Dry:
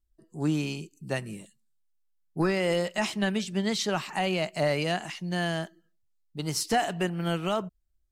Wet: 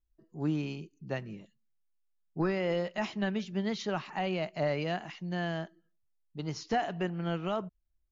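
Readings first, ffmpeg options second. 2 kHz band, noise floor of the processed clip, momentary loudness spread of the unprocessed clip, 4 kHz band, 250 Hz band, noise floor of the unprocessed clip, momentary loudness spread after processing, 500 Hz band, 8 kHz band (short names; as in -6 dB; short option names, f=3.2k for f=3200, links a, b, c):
-6.5 dB, -75 dBFS, 13 LU, -9.0 dB, -4.0 dB, -71 dBFS, 13 LU, -4.0 dB, -15.5 dB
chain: -af "lowpass=f=2.2k:p=1,volume=-3.5dB" -ar 16000 -c:a libmp3lame -b:a 80k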